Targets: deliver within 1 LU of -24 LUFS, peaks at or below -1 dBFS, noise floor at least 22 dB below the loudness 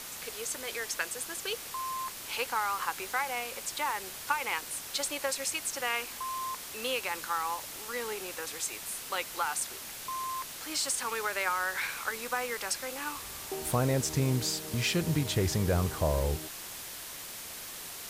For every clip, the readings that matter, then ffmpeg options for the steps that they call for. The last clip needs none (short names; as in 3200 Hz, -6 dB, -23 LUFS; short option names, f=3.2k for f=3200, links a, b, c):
noise floor -43 dBFS; noise floor target -55 dBFS; loudness -32.5 LUFS; peak -15.0 dBFS; loudness target -24.0 LUFS
-> -af "afftdn=nr=12:nf=-43"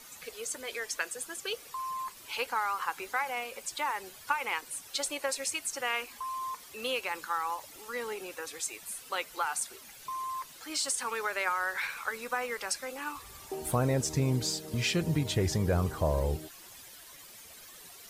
noise floor -51 dBFS; noise floor target -55 dBFS
-> -af "afftdn=nr=6:nf=-51"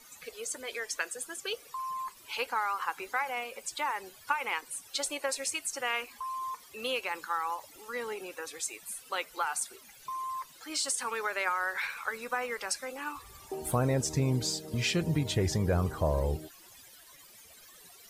noise floor -55 dBFS; loudness -33.0 LUFS; peak -15.5 dBFS; loudness target -24.0 LUFS
-> -af "volume=9dB"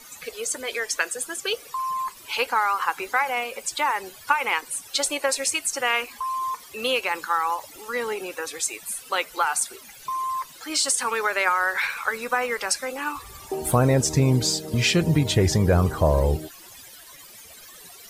loudness -24.0 LUFS; peak -6.5 dBFS; noise floor -46 dBFS